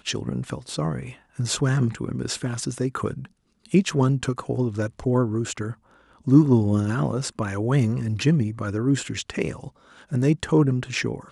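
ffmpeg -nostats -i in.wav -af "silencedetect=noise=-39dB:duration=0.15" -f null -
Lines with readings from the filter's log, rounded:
silence_start: 1.15
silence_end: 1.39 | silence_duration: 0.24
silence_start: 3.26
silence_end: 3.65 | silence_duration: 0.40
silence_start: 5.74
silence_end: 6.26 | silence_duration: 0.52
silence_start: 9.69
silence_end: 10.00 | silence_duration: 0.31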